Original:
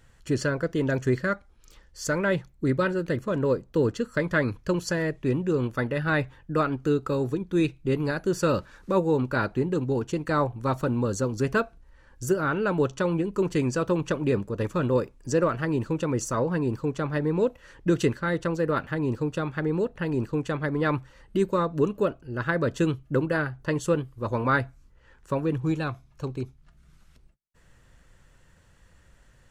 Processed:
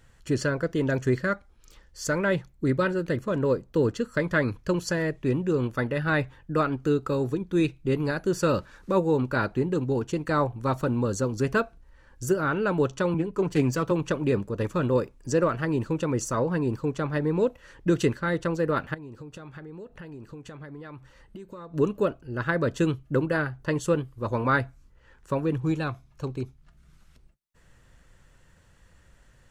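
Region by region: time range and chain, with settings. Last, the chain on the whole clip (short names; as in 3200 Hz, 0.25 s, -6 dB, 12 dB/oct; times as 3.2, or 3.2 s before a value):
13.14–13.91 self-modulated delay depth 0.058 ms + comb 7 ms, depth 34% + three-band expander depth 40%
18.94–21.74 compressor 8:1, threshold -37 dBFS + resonator 71 Hz, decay 0.16 s, mix 30%
whole clip: dry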